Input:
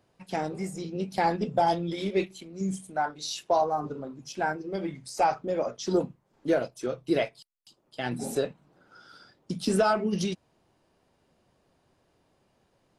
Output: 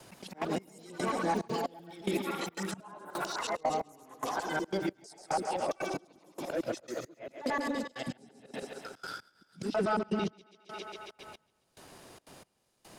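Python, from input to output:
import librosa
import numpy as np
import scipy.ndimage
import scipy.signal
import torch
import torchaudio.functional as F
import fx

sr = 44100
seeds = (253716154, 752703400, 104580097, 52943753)

y = fx.local_reverse(x, sr, ms=112.0)
y = fx.leveller(y, sr, passes=1)
y = fx.dynamic_eq(y, sr, hz=300.0, q=2.3, threshold_db=-36.0, ratio=4.0, max_db=4)
y = fx.env_lowpass_down(y, sr, base_hz=1700.0, full_db=-20.0)
y = F.preemphasis(torch.from_numpy(y), 0.8).numpy()
y = fx.auto_swell(y, sr, attack_ms=218.0)
y = fx.echo_thinned(y, sr, ms=136, feedback_pct=64, hz=300.0, wet_db=-5.0)
y = fx.echo_pitch(y, sr, ms=113, semitones=5, count=3, db_per_echo=-6.0)
y = fx.step_gate(y, sr, bpm=181, pattern='xxxx.xx.....x', floor_db=-24.0, edge_ms=4.5)
y = fx.band_squash(y, sr, depth_pct=70)
y = y * librosa.db_to_amplitude(8.5)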